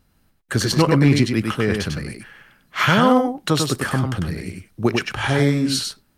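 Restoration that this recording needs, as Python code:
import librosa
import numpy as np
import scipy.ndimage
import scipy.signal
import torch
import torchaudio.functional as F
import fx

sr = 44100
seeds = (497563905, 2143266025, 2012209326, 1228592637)

y = fx.fix_declip(x, sr, threshold_db=-6.0)
y = fx.fix_echo_inverse(y, sr, delay_ms=98, level_db=-4.5)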